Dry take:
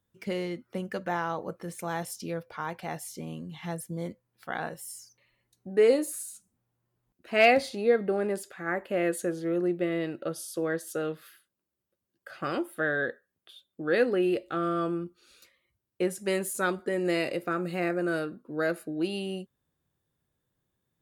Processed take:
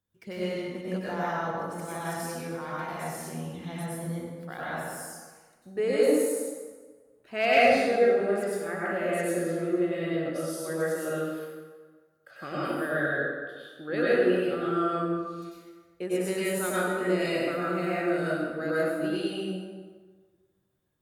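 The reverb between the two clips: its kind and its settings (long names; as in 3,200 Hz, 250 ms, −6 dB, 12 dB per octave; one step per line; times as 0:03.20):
dense smooth reverb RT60 1.5 s, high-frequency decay 0.65×, pre-delay 85 ms, DRR −8.5 dB
level −7.5 dB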